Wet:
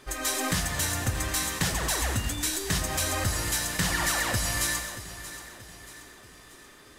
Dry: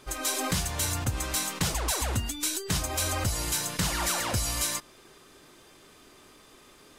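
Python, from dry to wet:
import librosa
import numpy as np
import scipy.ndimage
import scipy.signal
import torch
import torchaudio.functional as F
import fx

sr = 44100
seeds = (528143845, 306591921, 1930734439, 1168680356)

y = fx.peak_eq(x, sr, hz=1800.0, db=10.0, octaves=0.2)
y = fx.echo_feedback(y, sr, ms=631, feedback_pct=47, wet_db=-14.0)
y = fx.rev_gated(y, sr, seeds[0], gate_ms=280, shape='flat', drr_db=7.5)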